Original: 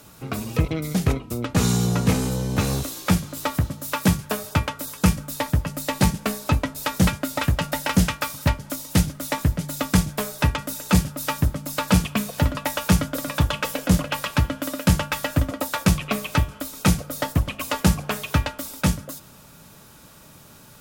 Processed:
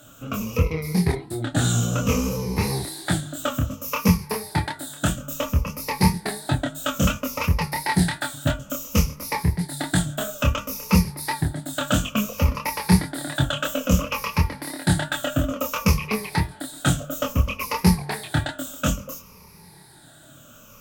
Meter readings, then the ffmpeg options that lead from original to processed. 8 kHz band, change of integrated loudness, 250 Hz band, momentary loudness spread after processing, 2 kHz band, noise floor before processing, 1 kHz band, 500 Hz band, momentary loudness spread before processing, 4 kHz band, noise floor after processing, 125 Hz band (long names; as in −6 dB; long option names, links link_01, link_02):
−0.5 dB, −0.5 dB, −0.5 dB, 7 LU, 0.0 dB, −48 dBFS, 0.0 dB, 0.0 dB, 6 LU, 0.0 dB, −48 dBFS, −1.0 dB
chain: -af "afftfilt=real='re*pow(10,15/40*sin(2*PI*(0.84*log(max(b,1)*sr/1024/100)/log(2)-(-0.59)*(pts-256)/sr)))':imag='im*pow(10,15/40*sin(2*PI*(0.84*log(max(b,1)*sr/1024/100)/log(2)-(-0.59)*(pts-256)/sr)))':win_size=1024:overlap=0.75,flanger=delay=22.5:depth=5.6:speed=2.9"